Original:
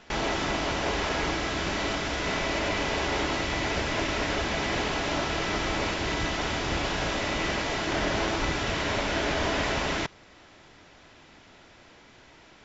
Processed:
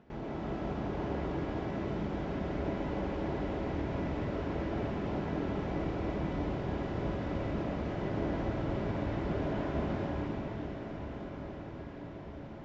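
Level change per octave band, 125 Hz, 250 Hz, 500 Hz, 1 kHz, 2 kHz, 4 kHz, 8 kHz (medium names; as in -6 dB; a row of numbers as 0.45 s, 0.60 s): -0.5 dB, -1.5 dB, -5.5 dB, -10.0 dB, -17.0 dB, -22.0 dB, no reading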